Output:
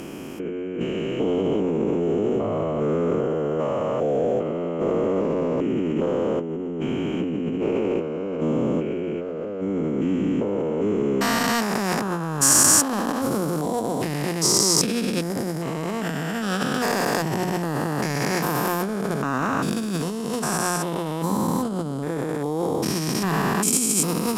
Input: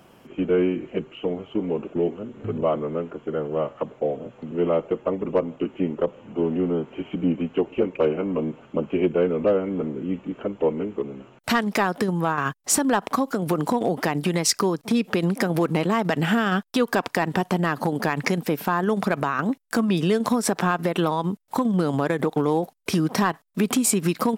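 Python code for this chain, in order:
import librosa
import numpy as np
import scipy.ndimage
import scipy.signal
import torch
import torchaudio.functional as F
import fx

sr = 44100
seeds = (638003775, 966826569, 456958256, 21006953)

y = fx.spec_steps(x, sr, hold_ms=400)
y = fx.hum_notches(y, sr, base_hz=60, count=4)
y = fx.over_compress(y, sr, threshold_db=-32.0, ratio=-1.0)
y = fx.fold_sine(y, sr, drive_db=4, ceiling_db=-12.0)
y = fx.band_shelf(y, sr, hz=8000.0, db=9.5, octaves=1.7)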